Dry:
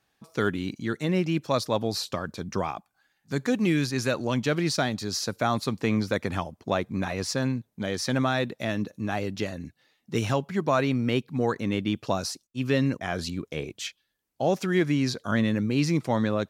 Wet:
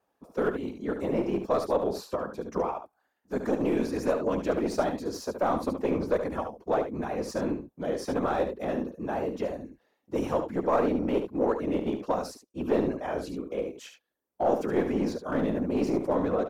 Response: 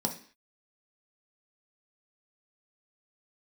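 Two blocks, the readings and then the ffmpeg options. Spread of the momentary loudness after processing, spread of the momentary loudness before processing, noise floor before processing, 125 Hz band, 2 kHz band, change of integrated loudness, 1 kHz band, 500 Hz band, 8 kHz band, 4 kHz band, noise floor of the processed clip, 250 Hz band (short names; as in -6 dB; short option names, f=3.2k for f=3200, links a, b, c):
7 LU, 9 LU, -75 dBFS, -10.0 dB, -9.0 dB, -2.0 dB, -0.5 dB, +1.5 dB, -11.0 dB, -13.5 dB, -77 dBFS, -3.0 dB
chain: -filter_complex "[0:a]afftfilt=real='hypot(re,im)*cos(2*PI*random(0))':imag='hypot(re,im)*sin(2*PI*random(1))':win_size=512:overlap=0.75,highpass=42,acrossover=split=610|6400[a][b][c];[a]crystalizer=i=7.5:c=0[d];[d][b][c]amix=inputs=3:normalize=0,aeval=exprs='clip(val(0),-1,0.0335)':c=same,equalizer=f=125:t=o:w=1:g=-8,equalizer=f=250:t=o:w=1:g=4,equalizer=f=500:t=o:w=1:g=8,equalizer=f=1k:t=o:w=1:g=5,equalizer=f=2k:t=o:w=1:g=-4,equalizer=f=4k:t=o:w=1:g=-8,equalizer=f=8k:t=o:w=1:g=-4,asplit=2[e][f];[f]aecho=0:1:72:0.398[g];[e][g]amix=inputs=2:normalize=0"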